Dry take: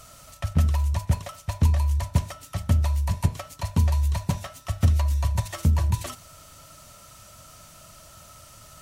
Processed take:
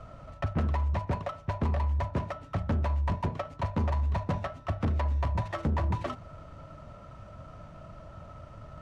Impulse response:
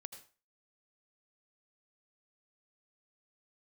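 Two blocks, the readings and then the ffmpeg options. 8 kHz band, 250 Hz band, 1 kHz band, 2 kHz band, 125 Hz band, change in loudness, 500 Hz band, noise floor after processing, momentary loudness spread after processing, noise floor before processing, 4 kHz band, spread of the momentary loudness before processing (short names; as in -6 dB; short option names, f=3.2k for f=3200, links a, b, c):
under -20 dB, -2.5 dB, +1.5 dB, -1.5 dB, -7.0 dB, -6.0 dB, +3.0 dB, -49 dBFS, 18 LU, -49 dBFS, -10.0 dB, 12 LU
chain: -filter_complex "[0:a]acrossover=split=170[a][b];[a]acompressor=threshold=-34dB:ratio=6[c];[c][b]amix=inputs=2:normalize=0,asoftclip=type=hard:threshold=-30dB,adynamicsmooth=sensitivity=2:basefreq=1.1k,volume=6.5dB"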